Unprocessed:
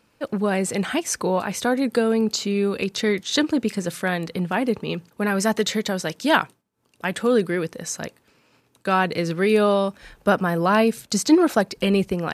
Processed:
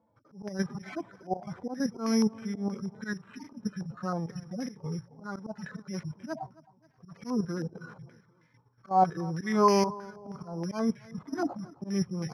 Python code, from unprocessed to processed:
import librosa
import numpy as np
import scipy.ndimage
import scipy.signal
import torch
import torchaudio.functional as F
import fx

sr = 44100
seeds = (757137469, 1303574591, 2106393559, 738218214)

p1 = fx.hpss_only(x, sr, part='harmonic')
p2 = scipy.signal.sosfilt(scipy.signal.butter(4, 84.0, 'highpass', fs=sr, output='sos'), p1)
p3 = fx.peak_eq(p2, sr, hz=110.0, db=11.0, octaves=0.79)
p4 = fx.level_steps(p3, sr, step_db=10)
p5 = fx.auto_swell(p4, sr, attack_ms=207.0)
p6 = fx.mod_noise(p5, sr, seeds[0], snr_db=33)
p7 = fx.formant_shift(p6, sr, semitones=-3)
p8 = p7 + fx.echo_feedback(p7, sr, ms=266, feedback_pct=46, wet_db=-21.0, dry=0)
p9 = (np.kron(scipy.signal.resample_poly(p8, 1, 8), np.eye(8)[0]) * 8)[:len(p8)]
p10 = fx.filter_held_lowpass(p9, sr, hz=6.3, low_hz=760.0, high_hz=2000.0)
y = p10 * librosa.db_to_amplitude(-3.0)